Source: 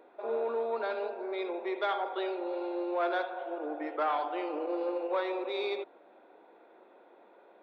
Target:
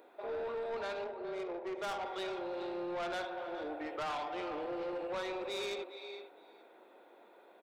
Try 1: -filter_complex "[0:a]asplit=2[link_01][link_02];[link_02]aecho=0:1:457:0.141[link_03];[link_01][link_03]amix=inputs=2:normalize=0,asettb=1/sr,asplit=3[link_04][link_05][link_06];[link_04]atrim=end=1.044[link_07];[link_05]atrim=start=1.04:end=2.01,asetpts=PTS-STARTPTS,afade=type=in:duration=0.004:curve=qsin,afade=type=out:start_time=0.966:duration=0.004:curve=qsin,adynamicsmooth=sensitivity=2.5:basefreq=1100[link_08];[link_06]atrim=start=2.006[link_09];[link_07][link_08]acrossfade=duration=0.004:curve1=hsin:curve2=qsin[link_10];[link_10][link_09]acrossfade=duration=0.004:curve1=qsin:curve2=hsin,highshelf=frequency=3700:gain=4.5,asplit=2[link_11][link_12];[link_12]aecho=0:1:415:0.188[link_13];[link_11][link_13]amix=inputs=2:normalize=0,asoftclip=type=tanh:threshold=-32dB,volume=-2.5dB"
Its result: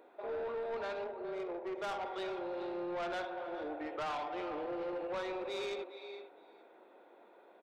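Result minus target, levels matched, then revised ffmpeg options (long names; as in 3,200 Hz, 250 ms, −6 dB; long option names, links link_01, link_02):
8,000 Hz band −4.5 dB
-filter_complex "[0:a]asplit=2[link_01][link_02];[link_02]aecho=0:1:457:0.141[link_03];[link_01][link_03]amix=inputs=2:normalize=0,asettb=1/sr,asplit=3[link_04][link_05][link_06];[link_04]atrim=end=1.044[link_07];[link_05]atrim=start=1.04:end=2.01,asetpts=PTS-STARTPTS,afade=type=in:duration=0.004:curve=qsin,afade=type=out:start_time=0.966:duration=0.004:curve=qsin,adynamicsmooth=sensitivity=2.5:basefreq=1100[link_08];[link_06]atrim=start=2.006[link_09];[link_07][link_08]acrossfade=duration=0.004:curve1=hsin:curve2=qsin[link_10];[link_10][link_09]acrossfade=duration=0.004:curve1=qsin:curve2=hsin,highshelf=frequency=3700:gain=13.5,asplit=2[link_11][link_12];[link_12]aecho=0:1:415:0.188[link_13];[link_11][link_13]amix=inputs=2:normalize=0,asoftclip=type=tanh:threshold=-32dB,volume=-2.5dB"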